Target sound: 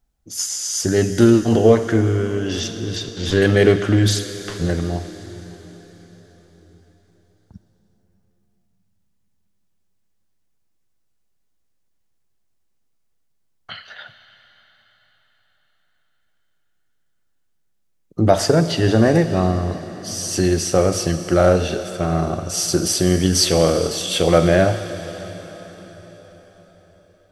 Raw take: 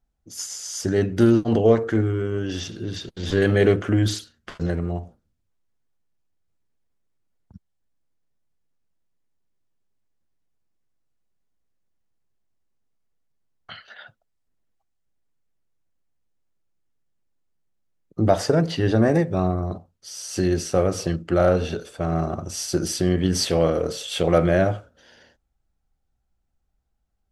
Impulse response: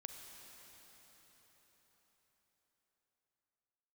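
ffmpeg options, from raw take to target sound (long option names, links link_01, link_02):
-filter_complex "[0:a]asplit=2[link_01][link_02];[1:a]atrim=start_sample=2205,highshelf=frequency=2400:gain=10.5[link_03];[link_02][link_03]afir=irnorm=-1:irlink=0,volume=0.5dB[link_04];[link_01][link_04]amix=inputs=2:normalize=0"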